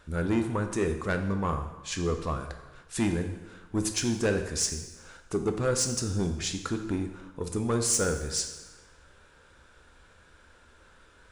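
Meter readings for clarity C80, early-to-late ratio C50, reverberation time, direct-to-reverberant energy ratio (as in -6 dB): 10.5 dB, 8.0 dB, 1.1 s, 5.5 dB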